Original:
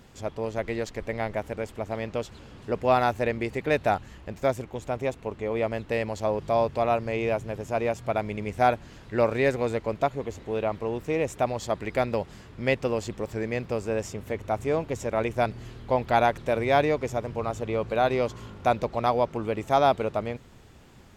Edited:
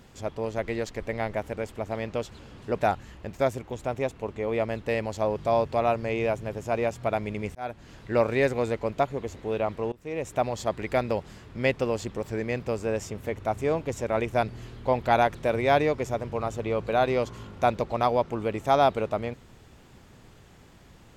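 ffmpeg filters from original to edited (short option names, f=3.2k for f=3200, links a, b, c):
-filter_complex "[0:a]asplit=4[a][b][c][d];[a]atrim=end=2.792[e];[b]atrim=start=3.818:end=8.58,asetpts=PTS-STARTPTS,afade=t=out:st=4.758:d=0.004:c=hsin[f];[c]atrim=start=8.58:end=10.95,asetpts=PTS-STARTPTS,afade=t=in:d=0.41,afade=t=out:st=2.366:d=0.004:c=hsin:silence=0.0668344[g];[d]atrim=start=10.95,asetpts=PTS-STARTPTS,afade=t=in:d=0.49:silence=0.0668344[h];[f][g][h]concat=n=3:v=0:a=1[i];[e][i]acrossfade=d=0.004:c1=hsin:c2=hsin"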